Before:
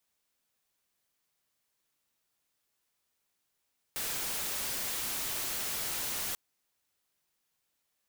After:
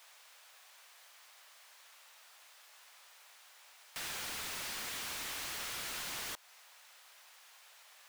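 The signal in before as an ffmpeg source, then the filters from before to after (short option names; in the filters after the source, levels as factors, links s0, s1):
-f lavfi -i "anoisesrc=c=white:a=0.0308:d=2.39:r=44100:seed=1"
-filter_complex "[0:a]highpass=f=570:w=0.5412,highpass=f=570:w=1.3066,acompressor=threshold=0.00891:ratio=3,asplit=2[s0][s1];[s1]highpass=f=720:p=1,volume=50.1,asoftclip=type=tanh:threshold=0.0355[s2];[s0][s2]amix=inputs=2:normalize=0,lowpass=f=2900:p=1,volume=0.501"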